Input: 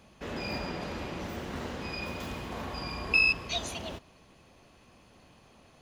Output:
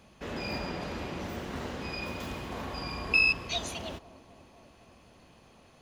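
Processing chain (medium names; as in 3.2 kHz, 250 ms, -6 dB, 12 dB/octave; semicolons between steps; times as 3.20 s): bucket-brigade echo 252 ms, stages 2048, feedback 74%, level -18 dB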